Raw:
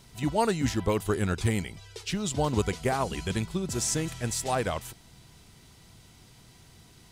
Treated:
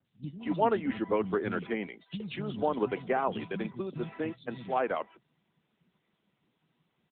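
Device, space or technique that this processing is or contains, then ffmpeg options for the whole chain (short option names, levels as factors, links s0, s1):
mobile call with aggressive noise cancelling: -filter_complex "[0:a]asplit=3[s0][s1][s2];[s0]afade=t=out:st=3.61:d=0.02[s3];[s1]agate=range=0.00501:threshold=0.0251:ratio=16:detection=peak,afade=t=in:st=3.61:d=0.02,afade=t=out:st=4.32:d=0.02[s4];[s2]afade=t=in:st=4.32:d=0.02[s5];[s3][s4][s5]amix=inputs=3:normalize=0,highpass=f=170:w=0.5412,highpass=f=170:w=1.3066,acrossover=split=210|3300[s6][s7][s8];[s8]adelay=50[s9];[s7]adelay=240[s10];[s6][s10][s9]amix=inputs=3:normalize=0,afftdn=nr=16:nf=-46" -ar 8000 -c:a libopencore_amrnb -b:a 10200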